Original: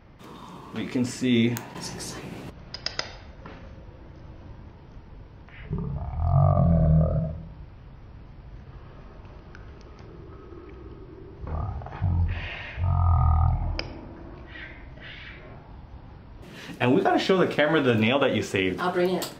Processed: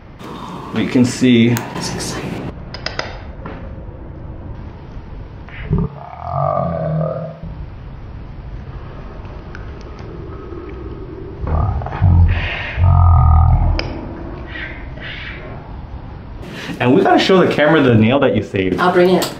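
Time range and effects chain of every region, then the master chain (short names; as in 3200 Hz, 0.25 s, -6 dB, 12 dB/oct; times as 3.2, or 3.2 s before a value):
2.38–4.55 LPF 2400 Hz 6 dB/oct + mismatched tape noise reduction decoder only
5.86–7.43 HPF 1000 Hz 6 dB/oct + flutter echo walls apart 9.8 m, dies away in 0.44 s
17.88–18.72 gate -23 dBFS, range -12 dB + tilt -2 dB/oct + de-hum 83.05 Hz, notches 9
whole clip: high shelf 5300 Hz -5 dB; maximiser +15 dB; gain -1 dB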